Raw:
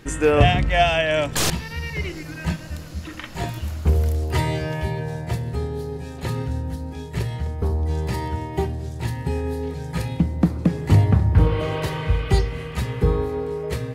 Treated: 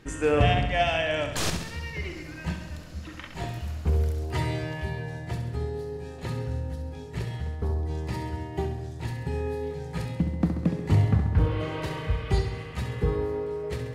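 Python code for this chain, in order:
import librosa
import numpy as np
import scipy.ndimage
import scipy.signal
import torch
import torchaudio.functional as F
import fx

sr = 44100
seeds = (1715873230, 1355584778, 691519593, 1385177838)

p1 = fx.high_shelf(x, sr, hz=11000.0, db=-9.5)
p2 = p1 + fx.echo_feedback(p1, sr, ms=67, feedback_pct=59, wet_db=-8.0, dry=0)
y = F.gain(torch.from_numpy(p2), -6.5).numpy()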